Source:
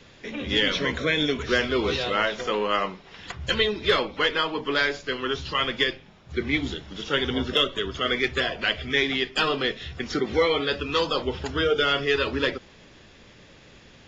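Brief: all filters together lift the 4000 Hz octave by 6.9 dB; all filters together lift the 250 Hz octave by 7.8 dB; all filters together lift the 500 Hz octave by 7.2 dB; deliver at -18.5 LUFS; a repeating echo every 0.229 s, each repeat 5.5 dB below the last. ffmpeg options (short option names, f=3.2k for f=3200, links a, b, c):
-af "equalizer=f=250:t=o:g=7.5,equalizer=f=500:t=o:g=6,equalizer=f=4k:t=o:g=9,aecho=1:1:229|458|687|916|1145|1374|1603:0.531|0.281|0.149|0.079|0.0419|0.0222|0.0118,volume=-1dB"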